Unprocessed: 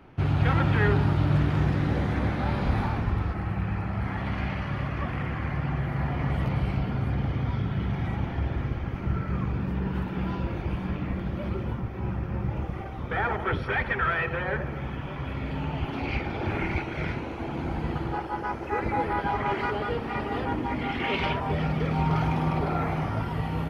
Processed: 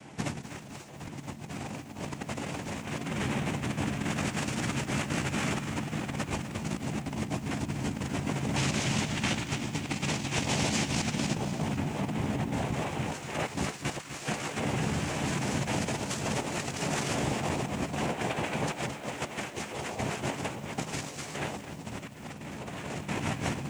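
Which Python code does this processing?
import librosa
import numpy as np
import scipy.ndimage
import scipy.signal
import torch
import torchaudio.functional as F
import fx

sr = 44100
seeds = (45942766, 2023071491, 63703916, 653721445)

y = fx.tracing_dist(x, sr, depth_ms=0.28)
y = scipy.signal.sosfilt(scipy.signal.butter(2, 180.0, 'highpass', fs=sr, output='sos'), y)
y = fx.hum_notches(y, sr, base_hz=50, count=6)
y = fx.noise_vocoder(y, sr, seeds[0], bands=4)
y = fx.bass_treble(y, sr, bass_db=8, treble_db=7)
y = fx.doubler(y, sr, ms=14.0, db=-8)
y = fx.over_compress(y, sr, threshold_db=-32.0, ratio=-0.5)
y = fx.peak_eq(y, sr, hz=4800.0, db=12.0, octaves=2.3, at=(8.56, 11.35))
y = fx.echo_crushed(y, sr, ms=250, feedback_pct=55, bits=8, wet_db=-11)
y = y * 10.0 ** (-1.0 / 20.0)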